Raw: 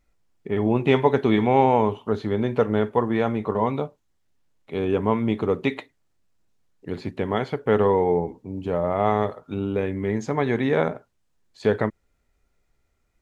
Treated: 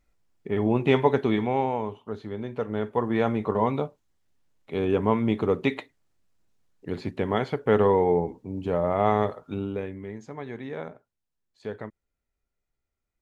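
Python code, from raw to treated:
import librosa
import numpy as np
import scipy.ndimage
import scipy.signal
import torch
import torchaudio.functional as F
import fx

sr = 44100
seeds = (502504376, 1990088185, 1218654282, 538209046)

y = fx.gain(x, sr, db=fx.line((1.11, -2.0), (1.8, -10.0), (2.55, -10.0), (3.22, -1.0), (9.47, -1.0), (10.18, -14.0)))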